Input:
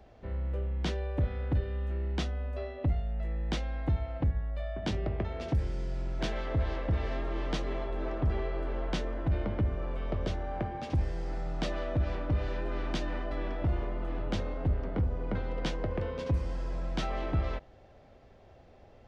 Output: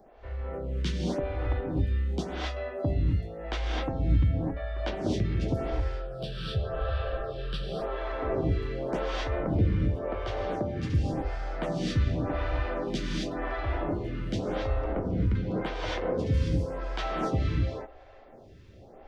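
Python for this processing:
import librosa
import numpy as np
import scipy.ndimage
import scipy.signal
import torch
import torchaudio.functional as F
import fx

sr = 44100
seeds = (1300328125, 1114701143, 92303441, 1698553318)

y = fx.fixed_phaser(x, sr, hz=1400.0, stages=8, at=(5.75, 7.82))
y = fx.rev_gated(y, sr, seeds[0], gate_ms=290, shape='rising', drr_db=-3.0)
y = fx.stagger_phaser(y, sr, hz=0.9)
y = y * librosa.db_to_amplitude(3.5)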